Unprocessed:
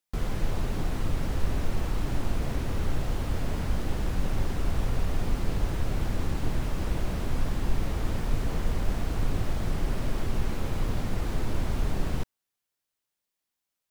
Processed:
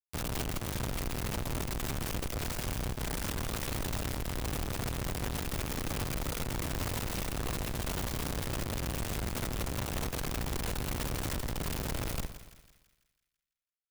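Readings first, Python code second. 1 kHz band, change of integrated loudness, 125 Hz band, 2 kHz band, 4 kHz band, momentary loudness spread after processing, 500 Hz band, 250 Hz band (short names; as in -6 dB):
-1.5 dB, -3.5 dB, -5.5 dB, +0.5 dB, +3.0 dB, 1 LU, -2.5 dB, -4.0 dB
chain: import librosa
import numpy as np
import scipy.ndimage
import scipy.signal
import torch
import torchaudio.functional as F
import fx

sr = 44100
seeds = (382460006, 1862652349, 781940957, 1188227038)

y = fx.fixed_phaser(x, sr, hz=1100.0, stages=8)
y = fx.fuzz(y, sr, gain_db=43.0, gate_db=-46.0)
y = fx.high_shelf(y, sr, hz=5600.0, db=-5.5)
y = (np.mod(10.0 ** (23.0 / 20.0) * y + 1.0, 2.0) - 1.0) / 10.0 ** (23.0 / 20.0)
y = fx.echo_split(y, sr, split_hz=1500.0, low_ms=114, high_ms=166, feedback_pct=52, wet_db=-12.0)
y = y * 10.0 ** (-7.0 / 20.0)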